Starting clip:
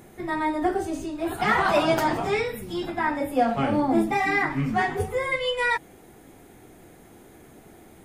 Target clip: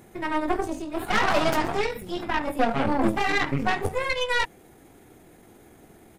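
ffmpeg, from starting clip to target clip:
-af "aeval=exprs='0.355*(cos(1*acos(clip(val(0)/0.355,-1,1)))-cos(1*PI/2))+0.0708*(cos(6*acos(clip(val(0)/0.355,-1,1)))-cos(6*PI/2))':c=same,atempo=1.3,volume=0.794"

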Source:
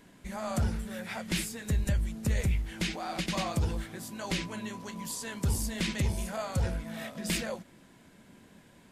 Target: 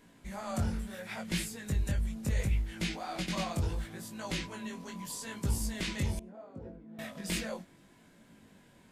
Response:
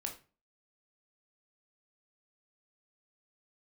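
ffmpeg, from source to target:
-filter_complex "[0:a]flanger=delay=17.5:depth=5.1:speed=0.73,asettb=1/sr,asplit=3[s0][s1][s2];[s0]atrim=end=6.194[s3];[s1]atrim=start=6.19:end=6.99,asetpts=PTS-STARTPTS,afade=t=in:d=0.004:c=qsin,afade=t=out:st=0.796:d=0.004:c=qsin,bandpass=f=330:t=q:w=2.4:csg=0[s4];[s2]atrim=start=6.986[s5];[s3][s4]acrossfade=d=0.004:c1=hsin:c2=qsin[s6];[s6][s5]acrossfade=d=0.004:c1=qsin:c2=hsin"

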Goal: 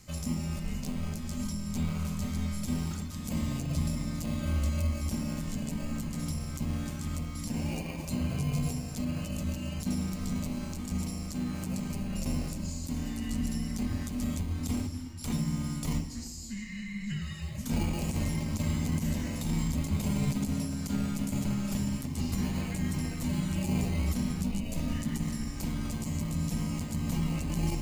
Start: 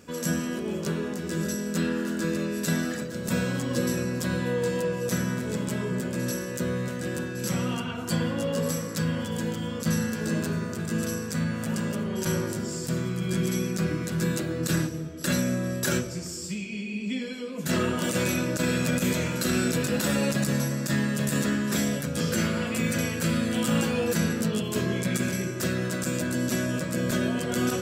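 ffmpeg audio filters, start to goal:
-filter_complex "[0:a]highpass=f=480:p=1,equalizer=f=2800:t=o:w=2:g=-5,acrossover=split=770|1600[s0][s1][s2];[s1]acrusher=samples=22:mix=1:aa=0.000001[s3];[s2]acompressor=threshold=0.00501:ratio=6[s4];[s0][s3][s4]amix=inputs=3:normalize=0,afreqshift=-410,volume=1.41"

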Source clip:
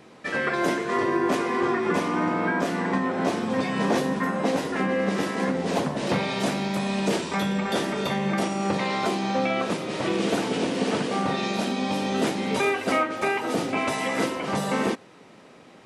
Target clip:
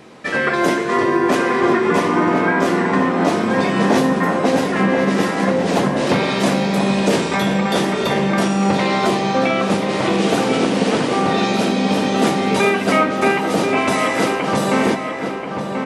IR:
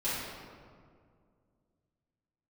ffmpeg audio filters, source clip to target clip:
-filter_complex "[0:a]asplit=2[s0][s1];[s1]adelay=1034,lowpass=f=2400:p=1,volume=0.531,asplit=2[s2][s3];[s3]adelay=1034,lowpass=f=2400:p=1,volume=0.47,asplit=2[s4][s5];[s5]adelay=1034,lowpass=f=2400:p=1,volume=0.47,asplit=2[s6][s7];[s7]adelay=1034,lowpass=f=2400:p=1,volume=0.47,asplit=2[s8][s9];[s9]adelay=1034,lowpass=f=2400:p=1,volume=0.47,asplit=2[s10][s11];[s11]adelay=1034,lowpass=f=2400:p=1,volume=0.47[s12];[s0][s2][s4][s6][s8][s10][s12]amix=inputs=7:normalize=0,asplit=2[s13][s14];[1:a]atrim=start_sample=2205,asetrate=26901,aresample=44100[s15];[s14][s15]afir=irnorm=-1:irlink=0,volume=0.0299[s16];[s13][s16]amix=inputs=2:normalize=0,volume=2.24"

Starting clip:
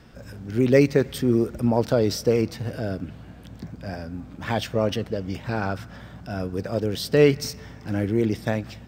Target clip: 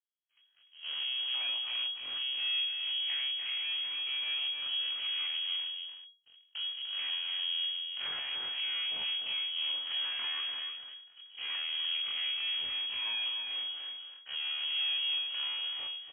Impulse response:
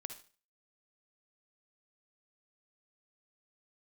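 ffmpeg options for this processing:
-filter_complex "[0:a]afftfilt=real='re':imag='-im':win_size=2048:overlap=0.75,agate=range=0.002:threshold=0.00794:ratio=16:detection=peak,equalizer=f=150:w=2.6:g=4,acompressor=threshold=0.0224:ratio=8,alimiter=level_in=2.24:limit=0.0631:level=0:latency=1:release=160,volume=0.447,atempo=0.55,aeval=exprs='abs(val(0))':c=same,asplit=2[s0][s1];[s1]aecho=0:1:297:0.501[s2];[s0][s2]amix=inputs=2:normalize=0,lowpass=f=2800:t=q:w=0.5098,lowpass=f=2800:t=q:w=0.6013,lowpass=f=2800:t=q:w=0.9,lowpass=f=2800:t=q:w=2.563,afreqshift=-3300,volume=1.5"

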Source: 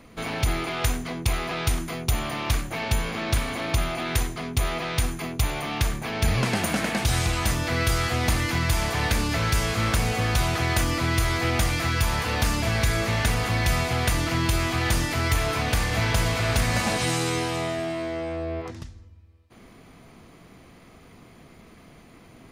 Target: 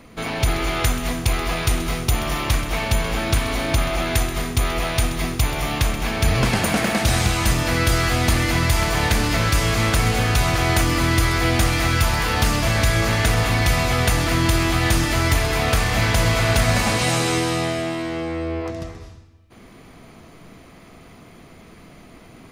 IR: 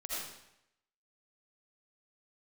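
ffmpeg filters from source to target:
-filter_complex "[0:a]asplit=2[s0][s1];[1:a]atrim=start_sample=2205,adelay=130[s2];[s1][s2]afir=irnorm=-1:irlink=0,volume=0.422[s3];[s0][s3]amix=inputs=2:normalize=0,volume=1.58"

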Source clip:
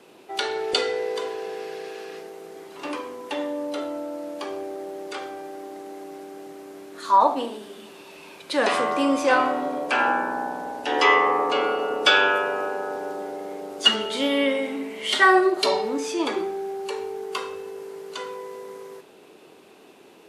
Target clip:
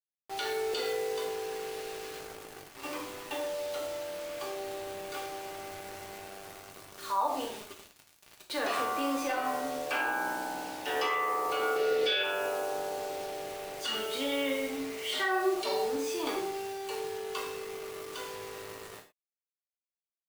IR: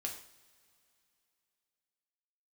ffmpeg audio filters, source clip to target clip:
-filter_complex "[0:a]acrossover=split=380|5100[s0][s1][s2];[s0]asoftclip=type=tanh:threshold=0.0251[s3];[s3][s1][s2]amix=inputs=3:normalize=0,acrusher=bits=5:mix=0:aa=0.000001,asettb=1/sr,asplit=3[s4][s5][s6];[s4]atrim=end=11.764[s7];[s5]atrim=start=11.76:end=12.23,asetpts=PTS-STARTPTS,afade=t=in:d=0.004:c=qsin,afade=t=out:st=0.466:d=0.004:c=qsin,equalizer=f=125:t=o:w=1:g=6,equalizer=f=500:t=o:w=1:g=10,equalizer=f=1000:t=o:w=1:g=-11,equalizer=f=2000:t=o:w=1:g=10,equalizer=f=4000:t=o:w=1:g=8,equalizer=f=8000:t=o:w=1:g=-4[s8];[s6]atrim=start=12.226[s9];[s7][s8]acrossfade=d=0.004:c1=hsin:c2=qsin[s10];[s10][s9]acrossfade=d=0.004:c1=qsin:c2=hsin,alimiter=limit=0.178:level=0:latency=1:release=68[s11];[1:a]atrim=start_sample=2205,afade=t=out:st=0.17:d=0.01,atrim=end_sample=7938[s12];[s11][s12]afir=irnorm=-1:irlink=0,volume=0.501"

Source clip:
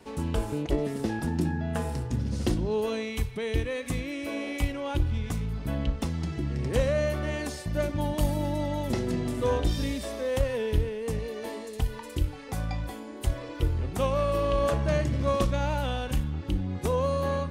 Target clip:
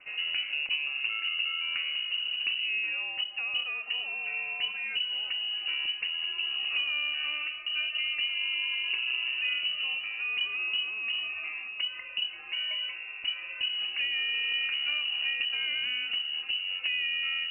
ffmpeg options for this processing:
-filter_complex "[0:a]acrossover=split=340|1400[s0][s1][s2];[s0]acompressor=threshold=0.0316:ratio=4[s3];[s1]acompressor=threshold=0.02:ratio=4[s4];[s2]acompressor=threshold=0.00282:ratio=4[s5];[s3][s4][s5]amix=inputs=3:normalize=0,lowpass=f=2600:t=q:w=0.5098,lowpass=f=2600:t=q:w=0.6013,lowpass=f=2600:t=q:w=0.9,lowpass=f=2600:t=q:w=2.563,afreqshift=-3000,bandreject=f=930:w=8.6"

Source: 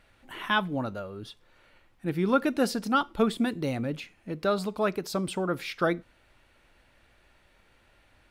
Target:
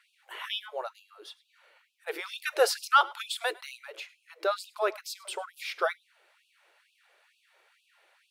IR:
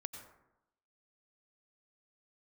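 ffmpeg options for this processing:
-filter_complex "[0:a]asettb=1/sr,asplit=3[s0][s1][s2];[s0]atrim=end=2.074[s3];[s1]atrim=start=2.07:end=3.52,asetpts=PTS-STARTPTS,afade=t=in:d=0.004:c=qsin,afade=t=out:st=1.446:d=0.004:c=qsin,acontrast=39[s4];[s2]atrim=start=3.516[s5];[s3][s4]acrossfade=d=0.004:c1=hsin:c2=qsin[s6];[s6][s5]acrossfade=d=0.004:c1=qsin:c2=hsin,asplit=2[s7][s8];[1:a]atrim=start_sample=2205,atrim=end_sample=3969,asetrate=37485,aresample=44100[s9];[s8][s9]afir=irnorm=-1:irlink=0,volume=1.88[s10];[s7][s10]amix=inputs=2:normalize=0,afftfilt=real='re*gte(b*sr/1024,330*pow(2500/330,0.5+0.5*sin(2*PI*2.2*pts/sr)))':imag='im*gte(b*sr/1024,330*pow(2500/330,0.5+0.5*sin(2*PI*2.2*pts/sr)))':win_size=1024:overlap=0.75,volume=0.422"

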